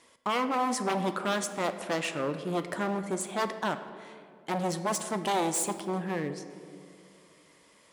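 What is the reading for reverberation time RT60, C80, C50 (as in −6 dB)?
2.5 s, 11.5 dB, 10.5 dB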